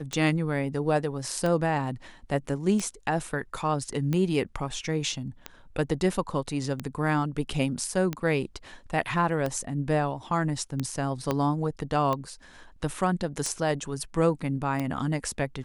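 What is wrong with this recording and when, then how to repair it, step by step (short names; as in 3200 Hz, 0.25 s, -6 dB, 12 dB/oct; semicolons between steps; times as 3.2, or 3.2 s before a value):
tick 45 rpm -16 dBFS
11.31 pop -12 dBFS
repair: de-click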